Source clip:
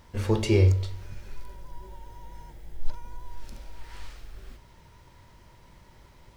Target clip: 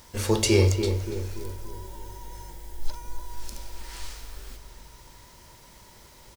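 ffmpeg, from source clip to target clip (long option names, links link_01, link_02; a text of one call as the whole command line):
ffmpeg -i in.wav -filter_complex "[0:a]bass=frequency=250:gain=-5,treble=frequency=4000:gain=12,asplit=2[link_01][link_02];[link_02]adelay=288,lowpass=frequency=1400:poles=1,volume=-6.5dB,asplit=2[link_03][link_04];[link_04]adelay=288,lowpass=frequency=1400:poles=1,volume=0.5,asplit=2[link_05][link_06];[link_06]adelay=288,lowpass=frequency=1400:poles=1,volume=0.5,asplit=2[link_07][link_08];[link_08]adelay=288,lowpass=frequency=1400:poles=1,volume=0.5,asplit=2[link_09][link_10];[link_10]adelay=288,lowpass=frequency=1400:poles=1,volume=0.5,asplit=2[link_11][link_12];[link_12]adelay=288,lowpass=frequency=1400:poles=1,volume=0.5[link_13];[link_03][link_05][link_07][link_09][link_11][link_13]amix=inputs=6:normalize=0[link_14];[link_01][link_14]amix=inputs=2:normalize=0,volume=3dB" out.wav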